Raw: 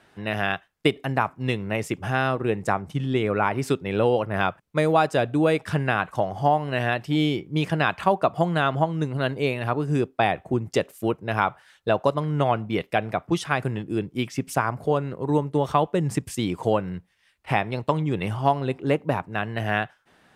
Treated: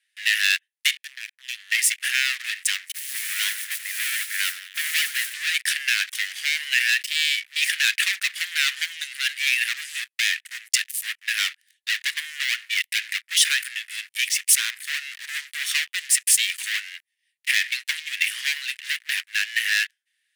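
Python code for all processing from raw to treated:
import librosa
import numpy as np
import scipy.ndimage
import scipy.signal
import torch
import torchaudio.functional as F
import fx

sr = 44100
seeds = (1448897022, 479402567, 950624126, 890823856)

y = fx.chain(x, sr, fx.lower_of_two(delay_ms=1.2),
    fx.level_steps(step_db=22), at=(0.97, 1.72))
y = fx.chain(y, sr, fx.lowpass(hz=1600.0, slope=24),
    fx.echo_feedback(ms=88, feedback_pct=59, wet_db=-18.0),
    fx.mod_noise(seeds[0], snr_db=25), at=(2.92, 5.34))
y = fx.peak_eq(y, sr, hz=10000.0, db=7.5, octaves=0.56)
y = fx.leveller(y, sr, passes=5)
y = scipy.signal.sosfilt(scipy.signal.cheby1(5, 1.0, 1800.0, 'highpass', fs=sr, output='sos'), y)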